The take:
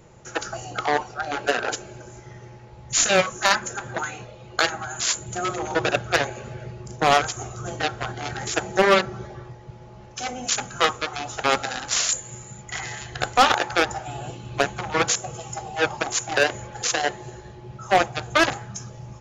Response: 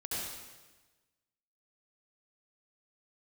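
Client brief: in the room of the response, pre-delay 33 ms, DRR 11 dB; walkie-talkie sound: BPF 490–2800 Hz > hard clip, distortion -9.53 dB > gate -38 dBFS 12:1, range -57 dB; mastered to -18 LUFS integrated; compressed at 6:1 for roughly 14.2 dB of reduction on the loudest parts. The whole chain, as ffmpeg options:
-filter_complex "[0:a]acompressor=threshold=-27dB:ratio=6,asplit=2[a][b];[1:a]atrim=start_sample=2205,adelay=33[c];[b][c]afir=irnorm=-1:irlink=0,volume=-14dB[d];[a][d]amix=inputs=2:normalize=0,highpass=490,lowpass=2.8k,asoftclip=type=hard:threshold=-29.5dB,agate=range=-57dB:threshold=-38dB:ratio=12,volume=19dB"

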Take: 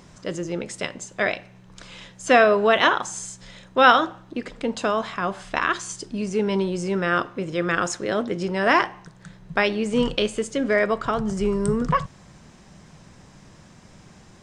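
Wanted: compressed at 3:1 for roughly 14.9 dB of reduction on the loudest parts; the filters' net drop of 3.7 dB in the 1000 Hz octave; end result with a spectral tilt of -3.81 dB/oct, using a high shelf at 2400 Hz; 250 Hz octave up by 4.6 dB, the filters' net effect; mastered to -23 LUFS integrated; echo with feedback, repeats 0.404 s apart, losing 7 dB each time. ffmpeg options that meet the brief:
-af "equalizer=f=250:t=o:g=6,equalizer=f=1k:t=o:g=-7,highshelf=f=2.4k:g=6.5,acompressor=threshold=-32dB:ratio=3,aecho=1:1:404|808|1212|1616|2020:0.447|0.201|0.0905|0.0407|0.0183,volume=9dB"

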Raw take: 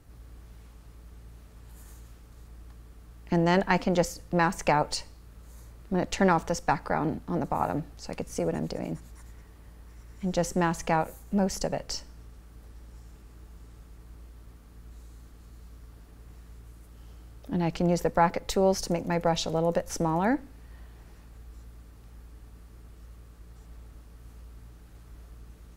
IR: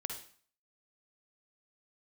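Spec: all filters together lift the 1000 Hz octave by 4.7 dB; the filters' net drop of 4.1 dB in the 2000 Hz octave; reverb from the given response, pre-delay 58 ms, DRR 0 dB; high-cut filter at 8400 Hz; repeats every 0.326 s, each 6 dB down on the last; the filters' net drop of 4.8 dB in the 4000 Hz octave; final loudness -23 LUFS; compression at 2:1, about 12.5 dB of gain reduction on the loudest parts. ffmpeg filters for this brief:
-filter_complex "[0:a]lowpass=8.4k,equalizer=f=1k:t=o:g=7.5,equalizer=f=2k:t=o:g=-7.5,equalizer=f=4k:t=o:g=-4.5,acompressor=threshold=-36dB:ratio=2,aecho=1:1:326|652|978|1304|1630|1956:0.501|0.251|0.125|0.0626|0.0313|0.0157,asplit=2[a][b];[1:a]atrim=start_sample=2205,adelay=58[c];[b][c]afir=irnorm=-1:irlink=0,volume=0dB[d];[a][d]amix=inputs=2:normalize=0,volume=8.5dB"

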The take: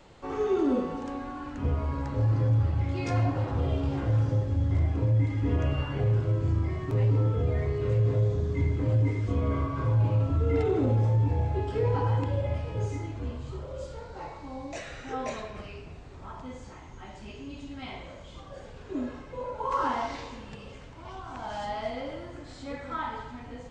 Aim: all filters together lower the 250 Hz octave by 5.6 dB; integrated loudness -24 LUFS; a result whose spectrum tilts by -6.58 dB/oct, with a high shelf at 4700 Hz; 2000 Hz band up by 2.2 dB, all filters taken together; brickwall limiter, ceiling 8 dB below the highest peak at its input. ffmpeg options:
-af "equalizer=f=250:t=o:g=-7.5,equalizer=f=2k:t=o:g=3.5,highshelf=f=4.7k:g=-4,volume=10.5dB,alimiter=limit=-14.5dB:level=0:latency=1"

